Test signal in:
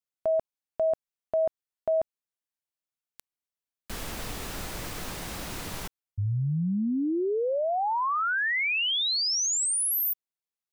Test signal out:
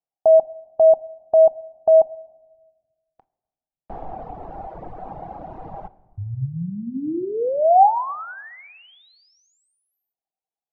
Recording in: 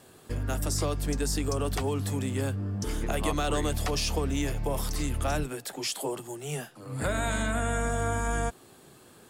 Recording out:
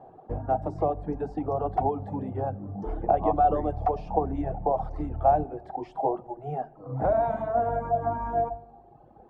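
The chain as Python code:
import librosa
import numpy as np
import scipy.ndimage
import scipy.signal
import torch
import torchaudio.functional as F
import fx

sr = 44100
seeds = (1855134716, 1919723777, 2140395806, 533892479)

y = fx.lowpass_res(x, sr, hz=760.0, q=7.5)
y = fx.room_shoebox(y, sr, seeds[0], volume_m3=900.0, walls='mixed', distance_m=0.64)
y = fx.dereverb_blind(y, sr, rt60_s=1.4)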